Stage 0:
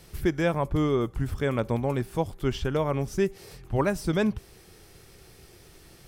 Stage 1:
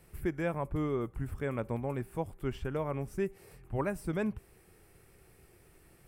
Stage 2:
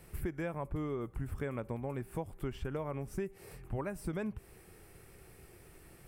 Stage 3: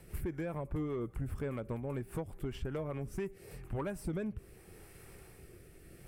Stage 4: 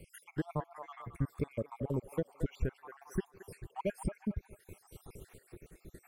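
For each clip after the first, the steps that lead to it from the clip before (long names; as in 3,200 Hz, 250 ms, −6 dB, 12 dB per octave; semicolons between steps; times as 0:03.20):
flat-topped bell 4,600 Hz −9.5 dB 1.3 octaves; level −8 dB
downward compressor, threshold −38 dBFS, peak gain reduction 11 dB; level +4 dB
rotating-speaker cabinet horn 5 Hz, later 0.75 Hz, at 0:02.79; soft clipping −32 dBFS, distortion −17 dB; level +3.5 dB
time-frequency cells dropped at random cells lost 67%; delay with a band-pass on its return 222 ms, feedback 37%, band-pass 1,100 Hz, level −6 dB; transient designer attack +2 dB, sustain −4 dB; level +4.5 dB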